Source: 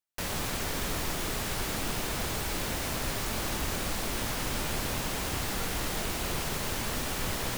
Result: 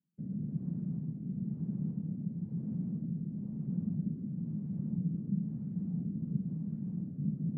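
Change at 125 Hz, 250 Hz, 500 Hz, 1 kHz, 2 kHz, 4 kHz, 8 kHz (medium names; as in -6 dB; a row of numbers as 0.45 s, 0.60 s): +2.5 dB, +4.0 dB, -21.0 dB, under -35 dB, under -40 dB, under -40 dB, under -40 dB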